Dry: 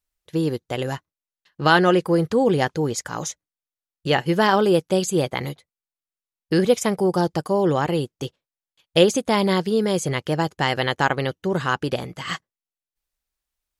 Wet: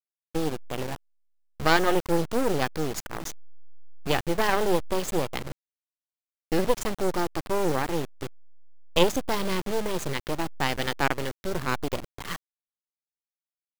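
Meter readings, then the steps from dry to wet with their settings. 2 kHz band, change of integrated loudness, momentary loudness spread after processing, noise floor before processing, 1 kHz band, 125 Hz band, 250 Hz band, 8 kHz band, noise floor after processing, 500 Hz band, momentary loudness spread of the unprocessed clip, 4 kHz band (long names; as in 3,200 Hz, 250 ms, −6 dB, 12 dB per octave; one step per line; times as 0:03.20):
−5.5 dB, −6.5 dB, 13 LU, below −85 dBFS, −5.5 dB, −8.5 dB, −7.5 dB, −5.0 dB, below −85 dBFS, −7.0 dB, 12 LU, −5.0 dB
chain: hold until the input has moved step −26 dBFS
half-wave rectification
level −1.5 dB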